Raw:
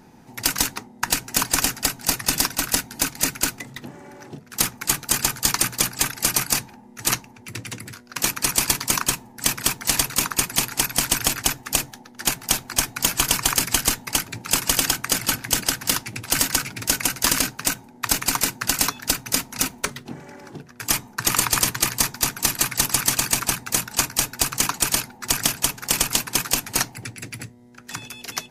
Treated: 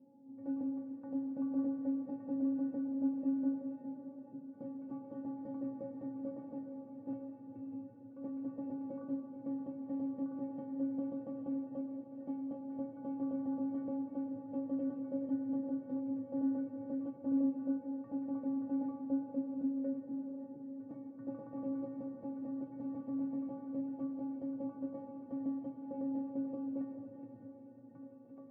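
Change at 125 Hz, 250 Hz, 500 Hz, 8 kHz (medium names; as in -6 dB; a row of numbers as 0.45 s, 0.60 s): -23.5 dB, -1.0 dB, -10.5 dB, under -40 dB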